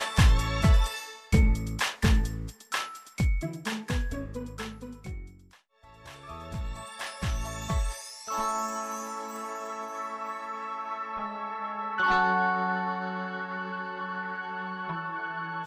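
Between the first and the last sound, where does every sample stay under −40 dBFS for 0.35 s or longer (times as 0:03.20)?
0:05.28–0:06.05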